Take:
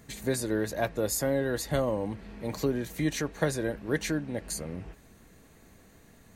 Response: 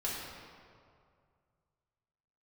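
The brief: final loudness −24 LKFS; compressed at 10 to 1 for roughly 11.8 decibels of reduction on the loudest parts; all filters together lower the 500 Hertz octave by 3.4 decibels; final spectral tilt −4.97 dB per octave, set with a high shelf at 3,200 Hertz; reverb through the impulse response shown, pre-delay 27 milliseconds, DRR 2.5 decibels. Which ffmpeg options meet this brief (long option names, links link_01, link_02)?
-filter_complex "[0:a]equalizer=frequency=500:width_type=o:gain=-4,highshelf=frequency=3200:gain=-4.5,acompressor=threshold=-36dB:ratio=10,asplit=2[link_01][link_02];[1:a]atrim=start_sample=2205,adelay=27[link_03];[link_02][link_03]afir=irnorm=-1:irlink=0,volume=-7dB[link_04];[link_01][link_04]amix=inputs=2:normalize=0,volume=16dB"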